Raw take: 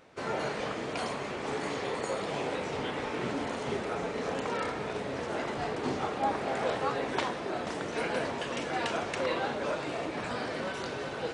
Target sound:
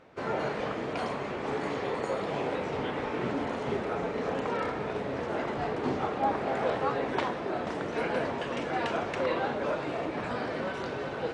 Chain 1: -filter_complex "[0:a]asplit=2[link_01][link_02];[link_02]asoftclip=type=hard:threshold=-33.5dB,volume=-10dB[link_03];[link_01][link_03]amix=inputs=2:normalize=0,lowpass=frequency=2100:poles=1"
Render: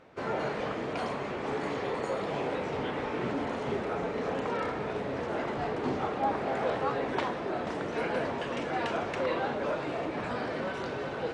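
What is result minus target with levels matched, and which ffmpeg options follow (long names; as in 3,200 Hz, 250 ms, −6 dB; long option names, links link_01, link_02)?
hard clipping: distortion +20 dB
-filter_complex "[0:a]asplit=2[link_01][link_02];[link_02]asoftclip=type=hard:threshold=-22dB,volume=-10dB[link_03];[link_01][link_03]amix=inputs=2:normalize=0,lowpass=frequency=2100:poles=1"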